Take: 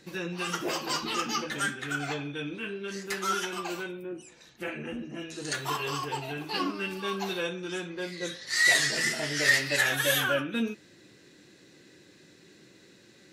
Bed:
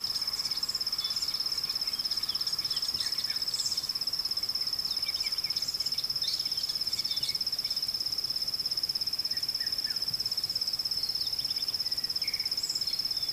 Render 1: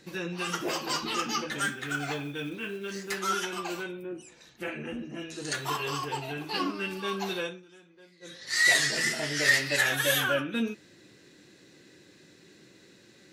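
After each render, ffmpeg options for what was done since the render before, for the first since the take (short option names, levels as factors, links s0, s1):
-filter_complex "[0:a]asettb=1/sr,asplit=3[s0][s1][s2];[s0]atrim=end=1.624[s3];[s1]atrim=start=1.62:end=3.18,asetpts=PTS-STARTPTS,afade=t=in:d=0.004:c=qsin,afade=t=out:st=1.556:d=0.004:c=qsin,acrusher=bits=6:mode=log:mix=0:aa=0.000001[s4];[s2]atrim=start=3.176[s5];[s3][s4]acrossfade=d=0.004:c1=hsin:c2=qsin[s6];[s6][s5]acrossfade=d=0.004:c1=qsin:c2=hsin,asplit=3[s7][s8][s9];[s7]atrim=end=7.65,asetpts=PTS-STARTPTS,afade=t=out:st=7.38:d=0.27:silence=0.1[s10];[s8]atrim=start=7.65:end=8.21,asetpts=PTS-STARTPTS,volume=0.1[s11];[s9]atrim=start=8.21,asetpts=PTS-STARTPTS,afade=t=in:d=0.27:silence=0.1[s12];[s10][s11][s12]concat=n=3:v=0:a=1"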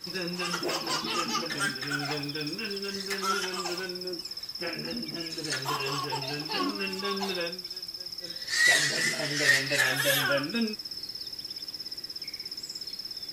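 -filter_complex "[1:a]volume=0.447[s0];[0:a][s0]amix=inputs=2:normalize=0"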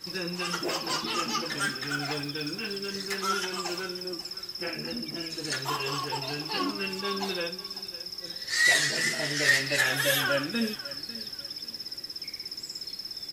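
-af "aecho=1:1:549|1098|1647:0.141|0.0424|0.0127"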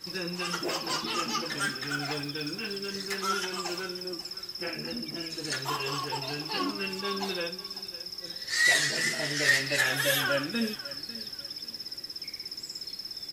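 -af "volume=0.891"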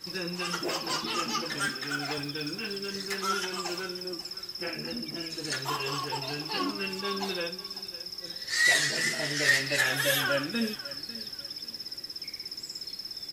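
-filter_complex "[0:a]asettb=1/sr,asplit=3[s0][s1][s2];[s0]atrim=end=1.684[s3];[s1]atrim=start=1.68:end=2.18,asetpts=PTS-STARTPTS,afade=t=in:d=0.004:c=qsin,afade=t=out:st=0.496:d=0.004:c=qsin,highpass=150[s4];[s2]atrim=start=2.176[s5];[s3][s4]acrossfade=d=0.004:c1=hsin:c2=qsin[s6];[s6][s5]acrossfade=d=0.004:c1=qsin:c2=hsin"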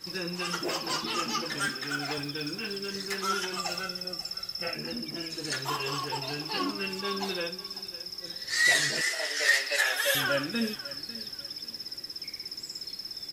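-filter_complex "[0:a]asettb=1/sr,asplit=3[s0][s1][s2];[s0]atrim=end=3.574[s3];[s1]atrim=start=3.57:end=4.75,asetpts=PTS-STARTPTS,afade=t=in:d=0.004:c=qsin,afade=t=out:st=1.176:d=0.004:c=qsin,aecho=1:1:1.5:0.66,atrim=end_sample=52038[s4];[s2]atrim=start=4.746[s5];[s3][s4]acrossfade=d=0.004:c1=hsin:c2=qsin[s6];[s6][s5]acrossfade=d=0.004:c1=qsin:c2=hsin,asettb=1/sr,asplit=3[s7][s8][s9];[s7]atrim=end=9.014[s10];[s8]atrim=start=9.01:end=10.15,asetpts=PTS-STARTPTS,afade=t=in:d=0.004:c=qsin,afade=t=out:st=1.136:d=0.004:c=qsin,highpass=f=460:w=0.5412,highpass=f=460:w=1.3066[s11];[s9]atrim=start=10.146[s12];[s10][s11]acrossfade=d=0.004:c1=hsin:c2=qsin[s13];[s13][s12]acrossfade=d=0.004:c1=qsin:c2=hsin"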